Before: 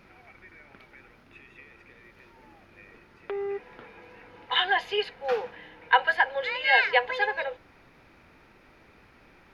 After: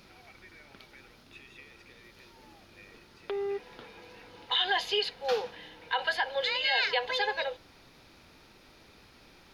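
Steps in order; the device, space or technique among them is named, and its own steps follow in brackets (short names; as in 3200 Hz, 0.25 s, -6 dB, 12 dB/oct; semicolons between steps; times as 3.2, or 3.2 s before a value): over-bright horn tweeter (resonant high shelf 2900 Hz +9 dB, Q 1.5; limiter -17 dBFS, peak gain reduction 10 dB); gain -1 dB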